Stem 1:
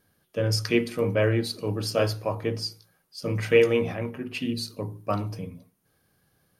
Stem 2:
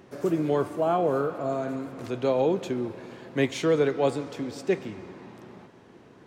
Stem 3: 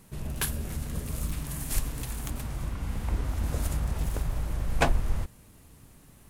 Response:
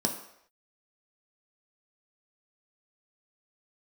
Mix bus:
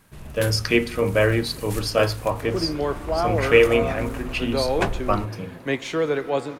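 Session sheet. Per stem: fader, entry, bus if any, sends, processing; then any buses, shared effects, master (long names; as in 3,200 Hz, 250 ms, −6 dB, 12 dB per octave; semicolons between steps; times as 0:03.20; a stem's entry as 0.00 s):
+1.5 dB, 0.00 s, no send, no processing
−2.5 dB, 2.30 s, no send, no processing
−4.5 dB, 0.00 s, no send, no processing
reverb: not used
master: parametric band 1,600 Hz +6 dB 2.8 octaves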